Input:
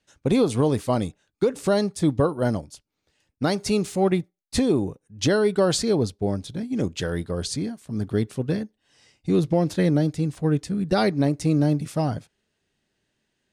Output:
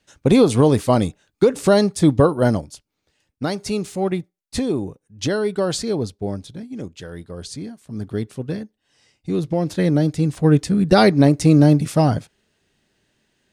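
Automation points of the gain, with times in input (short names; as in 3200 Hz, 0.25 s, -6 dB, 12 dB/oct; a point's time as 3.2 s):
2.4 s +6.5 dB
3.53 s -1 dB
6.38 s -1 dB
6.99 s -8.5 dB
7.92 s -1.5 dB
9.39 s -1.5 dB
10.55 s +8 dB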